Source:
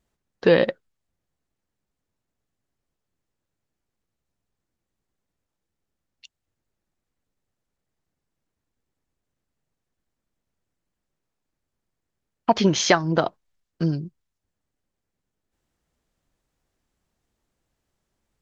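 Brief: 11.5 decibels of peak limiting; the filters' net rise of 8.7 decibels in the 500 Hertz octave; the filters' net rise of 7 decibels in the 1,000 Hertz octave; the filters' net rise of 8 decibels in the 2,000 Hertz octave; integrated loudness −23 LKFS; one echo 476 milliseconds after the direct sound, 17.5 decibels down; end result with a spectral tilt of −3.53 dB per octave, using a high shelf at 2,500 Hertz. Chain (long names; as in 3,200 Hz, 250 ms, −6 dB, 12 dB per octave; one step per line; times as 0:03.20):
parametric band 500 Hz +8.5 dB
parametric band 1,000 Hz +3.5 dB
parametric band 2,000 Hz +4.5 dB
high-shelf EQ 2,500 Hz +8.5 dB
brickwall limiter −6.5 dBFS
single-tap delay 476 ms −17.5 dB
level −3 dB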